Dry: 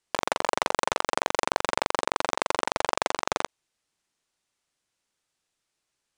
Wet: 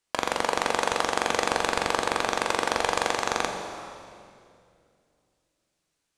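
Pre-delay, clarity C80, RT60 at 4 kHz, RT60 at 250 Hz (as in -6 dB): 4 ms, 6.0 dB, 2.1 s, 3.1 s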